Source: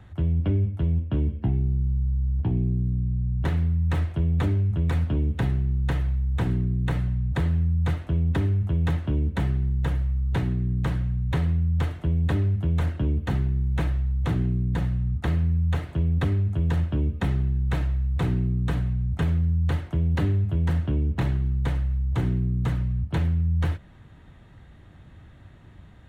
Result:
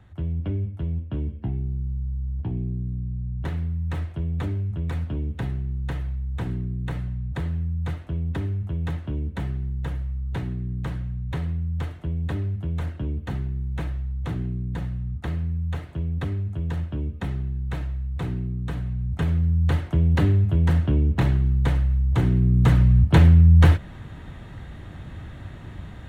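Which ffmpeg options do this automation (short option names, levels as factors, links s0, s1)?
-af "volume=3.35,afade=t=in:st=18.75:d=1.17:silence=0.398107,afade=t=in:st=22.3:d=0.66:silence=0.473151"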